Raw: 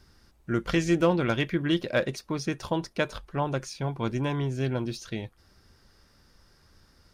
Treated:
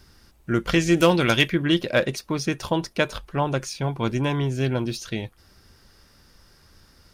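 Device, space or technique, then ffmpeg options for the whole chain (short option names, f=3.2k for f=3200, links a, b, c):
presence and air boost: -filter_complex "[0:a]asplit=3[a][b][c];[a]afade=t=out:st=0.96:d=0.02[d];[b]highshelf=f=2.9k:g=11.5,afade=t=in:st=0.96:d=0.02,afade=t=out:st=1.47:d=0.02[e];[c]afade=t=in:st=1.47:d=0.02[f];[d][e][f]amix=inputs=3:normalize=0,equalizer=f=2.8k:t=o:w=0.77:g=2.5,highshelf=f=9.3k:g=7,volume=4.5dB"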